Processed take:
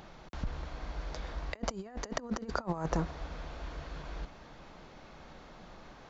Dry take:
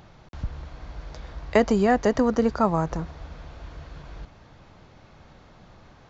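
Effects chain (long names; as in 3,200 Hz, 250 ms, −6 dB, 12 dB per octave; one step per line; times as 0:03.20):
parametric band 99 Hz −13.5 dB 0.83 octaves
compressor whose output falls as the input rises −29 dBFS, ratio −0.5
level −5 dB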